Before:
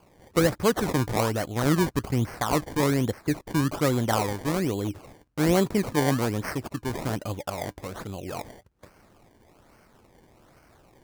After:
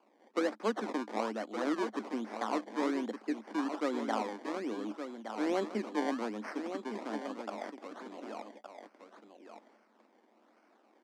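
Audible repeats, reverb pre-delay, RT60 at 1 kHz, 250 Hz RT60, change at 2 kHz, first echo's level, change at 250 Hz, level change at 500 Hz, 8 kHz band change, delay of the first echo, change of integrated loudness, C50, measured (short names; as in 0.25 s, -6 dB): 1, none, none, none, -9.5 dB, -8.5 dB, -9.0 dB, -9.0 dB, -18.0 dB, 1.167 s, -10.0 dB, none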